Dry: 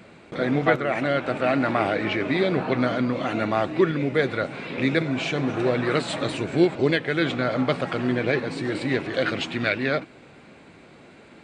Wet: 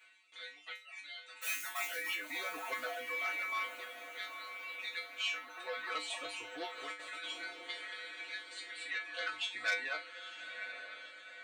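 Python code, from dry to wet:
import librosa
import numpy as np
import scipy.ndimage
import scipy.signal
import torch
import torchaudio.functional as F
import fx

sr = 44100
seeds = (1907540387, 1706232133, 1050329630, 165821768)

p1 = fx.mod_noise(x, sr, seeds[0], snr_db=11, at=(1.41, 2.15))
p2 = fx.dereverb_blind(p1, sr, rt60_s=1.1)
p3 = fx.filter_lfo_highpass(p2, sr, shape='sine', hz=0.28, low_hz=790.0, high_hz=3800.0, q=0.98)
p4 = fx.dereverb_blind(p3, sr, rt60_s=0.75)
p5 = fx.dmg_tone(p4, sr, hz=2300.0, level_db=-36.0, at=(3.06, 3.62), fade=0.02)
p6 = p5 + fx.echo_diffused(p5, sr, ms=943, feedback_pct=51, wet_db=-9.5, dry=0)
p7 = fx.over_compress(p6, sr, threshold_db=-33.0, ratio=-0.5, at=(6.76, 7.43), fade=0.02)
p8 = fx.notch(p7, sr, hz=5000.0, q=8.1)
p9 = fx.comb_fb(p8, sr, f0_hz=100.0, decay_s=0.29, harmonics='odd', damping=0.0, mix_pct=100)
p10 = fx.transformer_sat(p9, sr, knee_hz=2500.0)
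y = F.gain(torch.from_numpy(p10), 5.5).numpy()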